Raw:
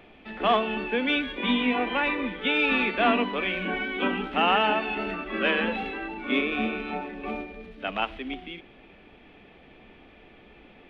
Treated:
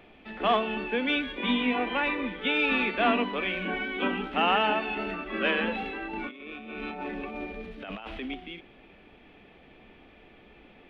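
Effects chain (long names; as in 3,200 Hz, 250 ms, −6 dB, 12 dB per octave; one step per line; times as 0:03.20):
0:06.13–0:08.31: compressor whose output falls as the input rises −36 dBFS, ratio −1
level −2 dB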